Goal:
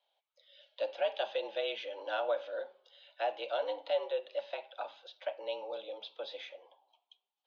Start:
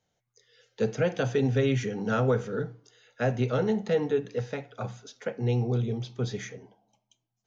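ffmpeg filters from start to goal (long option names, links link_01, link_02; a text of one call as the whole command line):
ffmpeg -i in.wav -filter_complex "[0:a]aexciter=amount=10.1:drive=4.3:freq=2700,asplit=2[link_01][link_02];[link_02]acompressor=threshold=-35dB:ratio=6,volume=-1dB[link_03];[link_01][link_03]amix=inputs=2:normalize=0,highpass=frequency=510:width_type=q:width=0.5412,highpass=frequency=510:width_type=q:width=1.307,lowpass=frequency=3500:width_type=q:width=0.5176,lowpass=frequency=3500:width_type=q:width=0.7071,lowpass=frequency=3500:width_type=q:width=1.932,afreqshift=88,tiltshelf=frequency=1200:gain=9,volume=-8.5dB" out.wav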